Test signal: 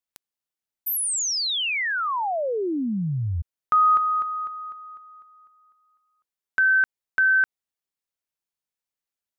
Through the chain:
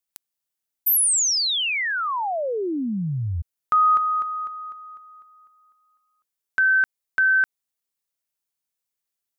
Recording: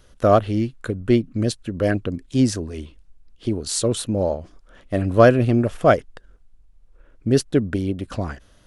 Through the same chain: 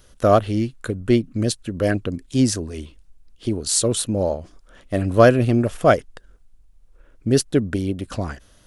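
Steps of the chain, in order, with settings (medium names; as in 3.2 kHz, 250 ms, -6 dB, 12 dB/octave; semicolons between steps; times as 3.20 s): treble shelf 5.6 kHz +8 dB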